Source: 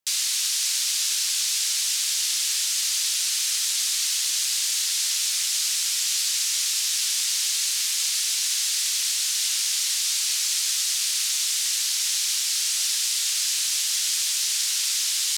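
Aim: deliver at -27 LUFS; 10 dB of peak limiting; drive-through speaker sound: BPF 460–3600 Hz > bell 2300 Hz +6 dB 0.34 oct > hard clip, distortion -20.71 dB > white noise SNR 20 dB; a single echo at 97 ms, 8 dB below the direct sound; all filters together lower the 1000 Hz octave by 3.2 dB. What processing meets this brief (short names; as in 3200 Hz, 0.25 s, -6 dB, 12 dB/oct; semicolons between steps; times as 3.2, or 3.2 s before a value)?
bell 1000 Hz -4.5 dB; limiter -21.5 dBFS; BPF 460–3600 Hz; bell 2300 Hz +6 dB 0.34 oct; echo 97 ms -8 dB; hard clip -31 dBFS; white noise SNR 20 dB; gain +7.5 dB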